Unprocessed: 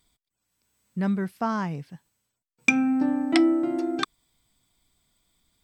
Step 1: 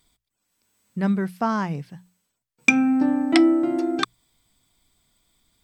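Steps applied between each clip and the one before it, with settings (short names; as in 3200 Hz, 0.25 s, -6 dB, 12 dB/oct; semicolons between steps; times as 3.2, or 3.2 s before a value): notches 60/120/180 Hz; gain +3.5 dB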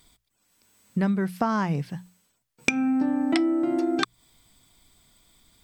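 compressor 6:1, threshold -28 dBFS, peak gain reduction 17 dB; gain +6.5 dB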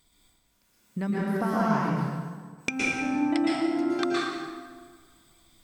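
plate-style reverb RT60 1.7 s, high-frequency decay 0.65×, pre-delay 0.105 s, DRR -6.5 dB; gain -7 dB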